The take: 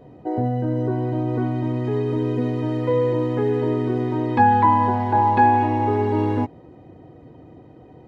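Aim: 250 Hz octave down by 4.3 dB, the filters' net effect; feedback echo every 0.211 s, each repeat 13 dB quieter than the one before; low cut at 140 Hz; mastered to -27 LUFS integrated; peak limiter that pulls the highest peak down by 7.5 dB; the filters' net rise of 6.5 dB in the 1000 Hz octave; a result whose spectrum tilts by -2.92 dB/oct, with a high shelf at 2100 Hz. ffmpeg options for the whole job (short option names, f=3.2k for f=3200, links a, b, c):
-af "highpass=140,equalizer=f=250:t=o:g=-5.5,equalizer=f=1k:t=o:g=7,highshelf=f=2.1k:g=6.5,alimiter=limit=-7.5dB:level=0:latency=1,aecho=1:1:211|422|633:0.224|0.0493|0.0108,volume=-7dB"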